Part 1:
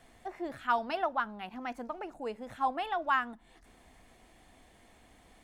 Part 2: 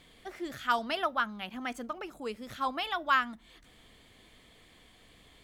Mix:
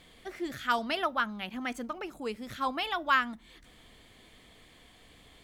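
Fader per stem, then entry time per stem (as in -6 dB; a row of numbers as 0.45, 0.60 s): -9.5, +1.5 dB; 0.00, 0.00 s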